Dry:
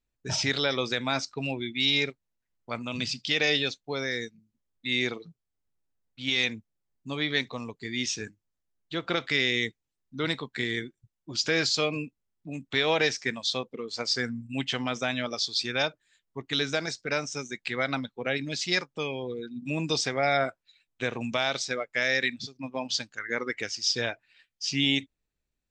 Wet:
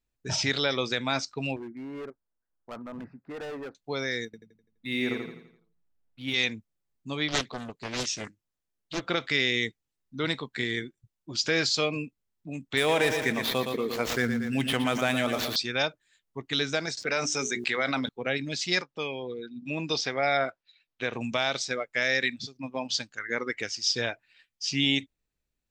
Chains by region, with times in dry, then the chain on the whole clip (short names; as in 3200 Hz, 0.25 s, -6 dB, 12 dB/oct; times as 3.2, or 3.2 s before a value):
1.56–3.75 elliptic low-pass 1600 Hz, stop band 50 dB + bell 120 Hz -8.5 dB 1.4 oct + hard clip -35 dBFS
4.25–6.34 median filter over 5 samples + high shelf 3000 Hz -11.5 dB + feedback echo 84 ms, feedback 44%, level -3.5 dB
7.28–9.01 low shelf 120 Hz -5 dB + Doppler distortion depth 0.94 ms
12.77–15.56 median filter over 9 samples + feedback echo 0.116 s, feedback 49%, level -10.5 dB + fast leveller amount 50%
16.97–18.09 HPF 300 Hz 6 dB/oct + notches 60/120/180/240/300/360/420 Hz + fast leveller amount 70%
18.82–21.13 LPF 5700 Hz 24 dB/oct + low shelf 210 Hz -7 dB
whole clip: dry